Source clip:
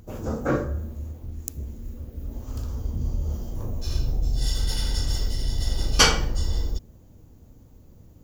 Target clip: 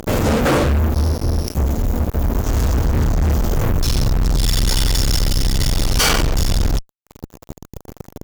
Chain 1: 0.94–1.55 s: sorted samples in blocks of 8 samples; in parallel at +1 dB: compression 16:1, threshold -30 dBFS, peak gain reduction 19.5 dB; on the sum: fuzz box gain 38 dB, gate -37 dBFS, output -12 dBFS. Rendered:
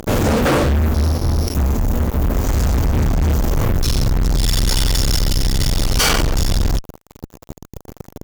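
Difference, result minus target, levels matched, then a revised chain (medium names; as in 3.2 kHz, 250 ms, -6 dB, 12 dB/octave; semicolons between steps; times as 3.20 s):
compression: peak gain reduction -9 dB
0.94–1.55 s: sorted samples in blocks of 8 samples; in parallel at +1 dB: compression 16:1, threshold -39.5 dBFS, peak gain reduction 28.5 dB; on the sum: fuzz box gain 38 dB, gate -37 dBFS, output -12 dBFS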